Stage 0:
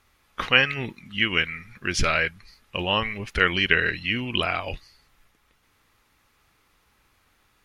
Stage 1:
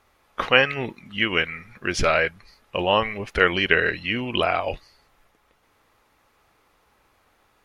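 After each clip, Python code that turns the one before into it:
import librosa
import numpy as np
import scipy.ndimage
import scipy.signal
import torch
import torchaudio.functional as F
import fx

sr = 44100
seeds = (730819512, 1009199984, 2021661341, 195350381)

y = fx.peak_eq(x, sr, hz=620.0, db=10.0, octaves=2.0)
y = y * librosa.db_to_amplitude(-2.0)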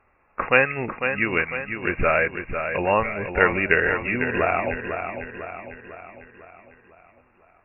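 y = fx.brickwall_lowpass(x, sr, high_hz=2800.0)
y = fx.echo_feedback(y, sr, ms=500, feedback_pct=51, wet_db=-7.5)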